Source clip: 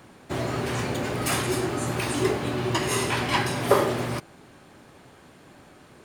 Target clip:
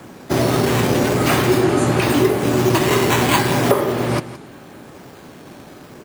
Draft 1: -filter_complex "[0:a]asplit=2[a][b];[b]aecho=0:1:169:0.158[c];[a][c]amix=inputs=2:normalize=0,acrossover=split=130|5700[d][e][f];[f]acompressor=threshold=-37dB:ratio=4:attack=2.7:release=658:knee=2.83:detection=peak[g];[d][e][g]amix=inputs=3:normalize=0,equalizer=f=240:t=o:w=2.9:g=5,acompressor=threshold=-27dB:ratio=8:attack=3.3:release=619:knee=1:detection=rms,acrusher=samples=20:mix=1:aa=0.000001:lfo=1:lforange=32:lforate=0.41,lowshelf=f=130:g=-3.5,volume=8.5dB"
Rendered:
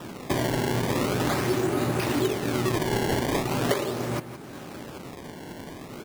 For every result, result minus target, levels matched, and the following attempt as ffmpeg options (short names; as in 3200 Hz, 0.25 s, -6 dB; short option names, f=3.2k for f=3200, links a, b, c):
compressor: peak gain reduction +9.5 dB; decimation with a swept rate: distortion +9 dB
-filter_complex "[0:a]asplit=2[a][b];[b]aecho=0:1:169:0.158[c];[a][c]amix=inputs=2:normalize=0,acrossover=split=130|5700[d][e][f];[f]acompressor=threshold=-37dB:ratio=4:attack=2.7:release=658:knee=2.83:detection=peak[g];[d][e][g]amix=inputs=3:normalize=0,equalizer=f=240:t=o:w=2.9:g=5,acompressor=threshold=-16dB:ratio=8:attack=3.3:release=619:knee=1:detection=rms,acrusher=samples=20:mix=1:aa=0.000001:lfo=1:lforange=32:lforate=0.41,lowshelf=f=130:g=-3.5,volume=8.5dB"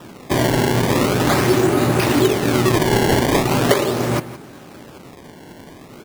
decimation with a swept rate: distortion +9 dB
-filter_complex "[0:a]asplit=2[a][b];[b]aecho=0:1:169:0.158[c];[a][c]amix=inputs=2:normalize=0,acrossover=split=130|5700[d][e][f];[f]acompressor=threshold=-37dB:ratio=4:attack=2.7:release=658:knee=2.83:detection=peak[g];[d][e][g]amix=inputs=3:normalize=0,equalizer=f=240:t=o:w=2.9:g=5,acompressor=threshold=-16dB:ratio=8:attack=3.3:release=619:knee=1:detection=rms,acrusher=samples=5:mix=1:aa=0.000001:lfo=1:lforange=8:lforate=0.41,lowshelf=f=130:g=-3.5,volume=8.5dB"